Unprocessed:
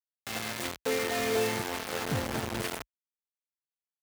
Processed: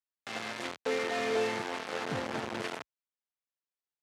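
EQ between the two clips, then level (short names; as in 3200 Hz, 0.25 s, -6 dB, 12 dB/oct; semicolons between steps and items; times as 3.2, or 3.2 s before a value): BPF 120–7800 Hz; low shelf 200 Hz -8 dB; high shelf 4700 Hz -9.5 dB; 0.0 dB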